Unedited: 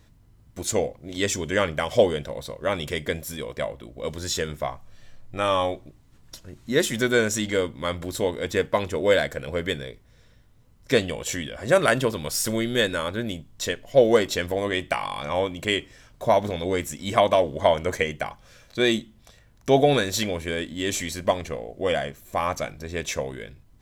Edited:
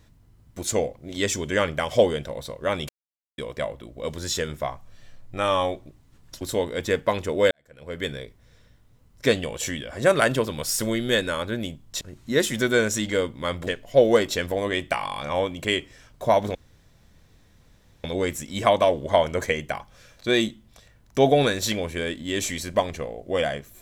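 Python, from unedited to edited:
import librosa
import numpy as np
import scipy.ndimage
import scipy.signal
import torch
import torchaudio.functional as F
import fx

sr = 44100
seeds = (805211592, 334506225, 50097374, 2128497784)

y = fx.edit(x, sr, fx.silence(start_s=2.89, length_s=0.49),
    fx.move(start_s=6.41, length_s=1.66, to_s=13.67),
    fx.fade_in_span(start_s=9.17, length_s=0.6, curve='qua'),
    fx.insert_room_tone(at_s=16.55, length_s=1.49), tone=tone)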